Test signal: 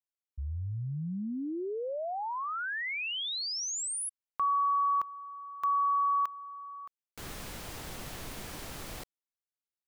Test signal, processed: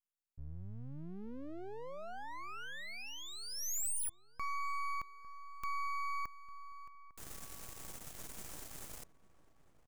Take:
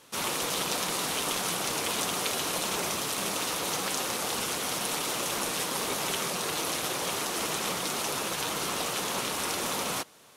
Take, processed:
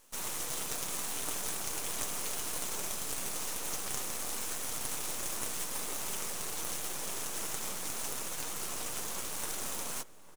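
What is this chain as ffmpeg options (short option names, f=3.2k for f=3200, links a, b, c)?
-filter_complex "[0:a]highshelf=f=5.4k:t=q:w=1.5:g=7,aeval=exprs='max(val(0),0)':c=same,asplit=2[a][b];[b]adelay=852,lowpass=f=1.3k:p=1,volume=-16dB,asplit=2[c][d];[d]adelay=852,lowpass=f=1.3k:p=1,volume=0.45,asplit=2[e][f];[f]adelay=852,lowpass=f=1.3k:p=1,volume=0.45,asplit=2[g][h];[h]adelay=852,lowpass=f=1.3k:p=1,volume=0.45[i];[a][c][e][g][i]amix=inputs=5:normalize=0,volume=-6.5dB"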